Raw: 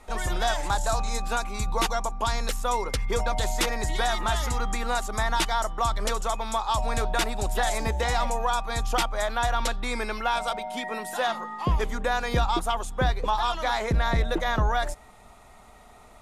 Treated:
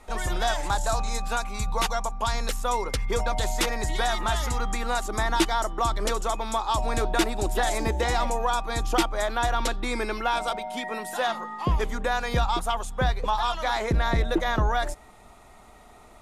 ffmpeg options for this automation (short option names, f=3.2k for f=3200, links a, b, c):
-af "asetnsamples=n=441:p=0,asendcmd='1.13 equalizer g -8.5;2.34 equalizer g 1.5;5.05 equalizer g 12.5;10.56 equalizer g 2;12.06 equalizer g -5;13.76 equalizer g 5.5',equalizer=f=330:t=o:w=0.45:g=1"